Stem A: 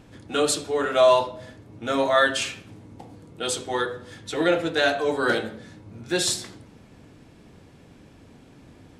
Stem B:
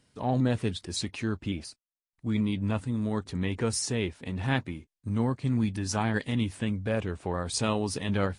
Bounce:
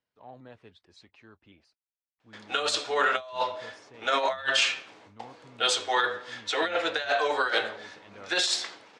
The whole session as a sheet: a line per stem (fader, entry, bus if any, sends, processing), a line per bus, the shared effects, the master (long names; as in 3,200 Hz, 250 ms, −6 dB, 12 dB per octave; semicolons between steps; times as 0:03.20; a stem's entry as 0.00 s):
+2.0 dB, 2.20 s, no send, meter weighting curve A; noise gate with hold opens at −45 dBFS; compressor whose output falls as the input rises −26 dBFS, ratio −0.5
−14.5 dB, 0.00 s, no send, low-pass filter 2,200 Hz 6 dB per octave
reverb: not used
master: three-way crossover with the lows and the highs turned down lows −14 dB, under 450 Hz, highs −23 dB, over 7,000 Hz